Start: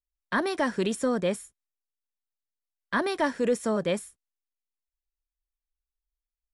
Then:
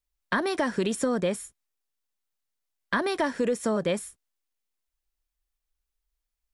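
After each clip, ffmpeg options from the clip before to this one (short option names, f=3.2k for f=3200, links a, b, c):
-af "acompressor=threshold=-30dB:ratio=4,volume=6.5dB"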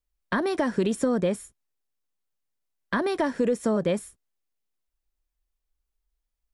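-af "tiltshelf=f=830:g=3.5"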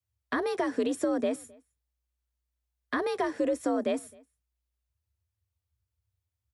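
-filter_complex "[0:a]afreqshift=60,asplit=2[a][b];[b]adelay=262.4,volume=-26dB,highshelf=f=4k:g=-5.9[c];[a][c]amix=inputs=2:normalize=0,volume=-4dB"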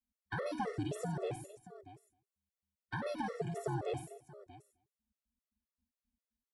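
-af "aeval=exprs='val(0)*sin(2*PI*140*n/s)':c=same,aecho=1:1:52|88|94|632:0.299|0.126|0.237|0.15,afftfilt=real='re*gt(sin(2*PI*3.8*pts/sr)*(1-2*mod(floor(b*sr/1024/360),2)),0)':imag='im*gt(sin(2*PI*3.8*pts/sr)*(1-2*mod(floor(b*sr/1024/360),2)),0)':win_size=1024:overlap=0.75,volume=-3.5dB"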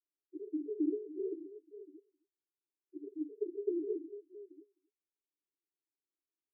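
-af "asuperpass=centerf=350:order=20:qfactor=2.4,volume=8dB"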